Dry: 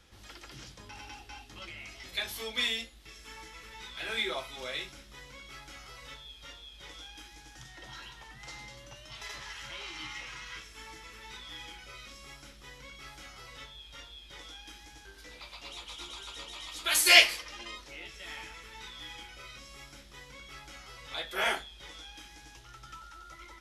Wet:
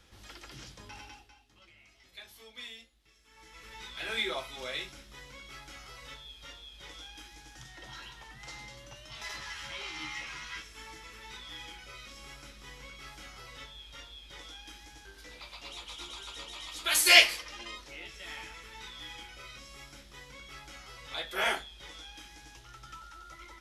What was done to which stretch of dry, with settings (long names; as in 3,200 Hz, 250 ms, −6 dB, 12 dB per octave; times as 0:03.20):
0:00.93–0:03.73: duck −14.5 dB, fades 0.42 s
0:09.15–0:10.62: double-tracking delay 13 ms −4 dB
0:11.66–0:12.41: delay throw 500 ms, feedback 65%, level −10 dB